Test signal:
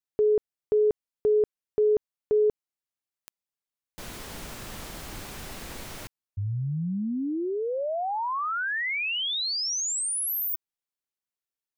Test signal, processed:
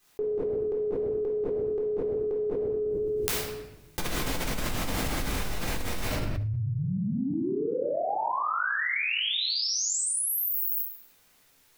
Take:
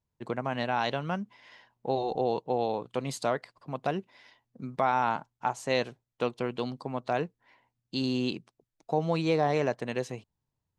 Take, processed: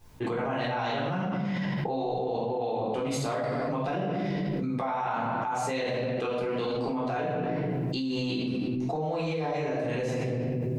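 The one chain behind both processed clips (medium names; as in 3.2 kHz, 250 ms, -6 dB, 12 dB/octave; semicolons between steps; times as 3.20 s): simulated room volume 460 m³, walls mixed, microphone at 3.8 m; level flattener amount 100%; trim -17.5 dB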